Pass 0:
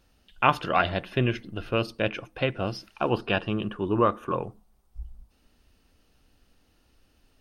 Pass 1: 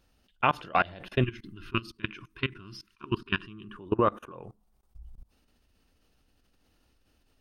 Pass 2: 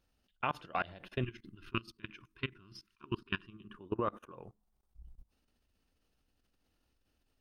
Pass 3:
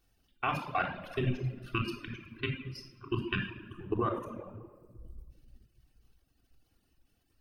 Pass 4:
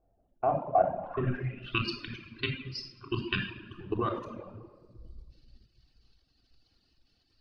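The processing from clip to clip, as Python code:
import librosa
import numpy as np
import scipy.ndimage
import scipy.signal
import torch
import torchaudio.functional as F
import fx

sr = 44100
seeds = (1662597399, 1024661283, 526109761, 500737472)

y1 = fx.level_steps(x, sr, step_db=23)
y1 = fx.spec_box(y1, sr, start_s=1.22, length_s=2.56, low_hz=420.0, high_hz=940.0, gain_db=-25)
y1 = y1 * 10.0 ** (1.5 / 20.0)
y2 = fx.level_steps(y1, sr, step_db=9)
y2 = y2 * 10.0 ** (-5.0 / 20.0)
y3 = fx.high_shelf(y2, sr, hz=7800.0, db=8.5)
y3 = fx.room_shoebox(y3, sr, seeds[0], volume_m3=2500.0, walls='mixed', distance_m=3.5)
y3 = fx.dereverb_blind(y3, sr, rt60_s=1.2)
y4 = fx.filter_sweep_lowpass(y3, sr, from_hz=650.0, to_hz=4500.0, start_s=0.94, end_s=1.85, q=6.0)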